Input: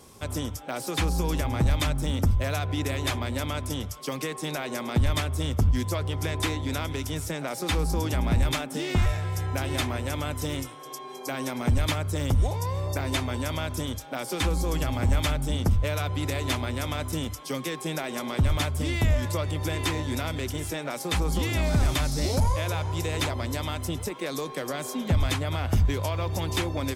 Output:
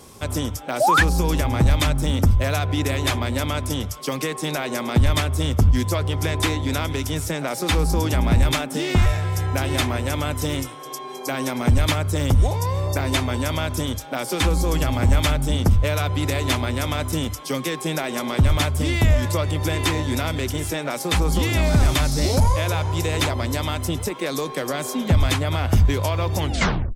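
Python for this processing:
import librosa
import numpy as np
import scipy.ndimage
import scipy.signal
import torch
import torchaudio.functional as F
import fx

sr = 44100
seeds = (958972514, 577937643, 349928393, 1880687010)

y = fx.tape_stop_end(x, sr, length_s=0.56)
y = fx.spec_paint(y, sr, seeds[0], shape='rise', start_s=0.8, length_s=0.23, low_hz=560.0, high_hz=1900.0, level_db=-22.0)
y = y * librosa.db_to_amplitude(6.0)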